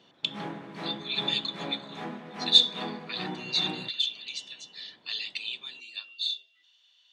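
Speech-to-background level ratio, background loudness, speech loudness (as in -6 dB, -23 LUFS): 10.5 dB, -39.0 LUFS, -28.5 LUFS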